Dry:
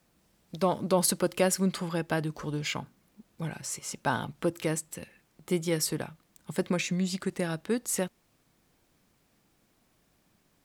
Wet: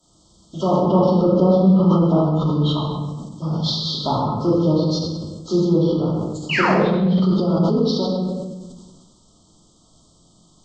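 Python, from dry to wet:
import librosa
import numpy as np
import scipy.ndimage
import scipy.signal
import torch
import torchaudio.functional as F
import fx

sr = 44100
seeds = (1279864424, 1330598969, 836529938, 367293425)

y = fx.freq_compress(x, sr, knee_hz=1300.0, ratio=1.5)
y = fx.env_lowpass_down(y, sr, base_hz=860.0, full_db=-24.5)
y = scipy.signal.sosfilt(scipy.signal.cheby1(5, 1.0, [1300.0, 3100.0], 'bandstop', fs=sr, output='sos'), y)
y = fx.high_shelf(y, sr, hz=4800.0, db=11.0)
y = y + 10.0 ** (-8.0 / 20.0) * np.pad(y, (int(130 * sr / 1000.0), 0))[:len(y)]
y = fx.spec_paint(y, sr, seeds[0], shape='fall', start_s=6.49, length_s=0.29, low_hz=350.0, high_hz=3100.0, level_db=-29.0)
y = fx.room_shoebox(y, sr, seeds[1], volume_m3=540.0, walls='mixed', distance_m=2.9)
y = fx.sustainer(y, sr, db_per_s=36.0)
y = F.gain(torch.from_numpy(y), 3.5).numpy()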